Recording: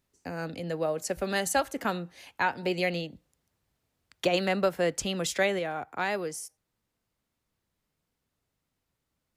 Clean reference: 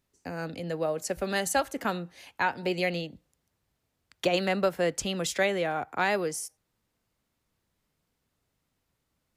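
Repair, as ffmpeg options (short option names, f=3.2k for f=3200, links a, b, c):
-af "asetnsamples=n=441:p=0,asendcmd='5.59 volume volume 3.5dB',volume=0dB"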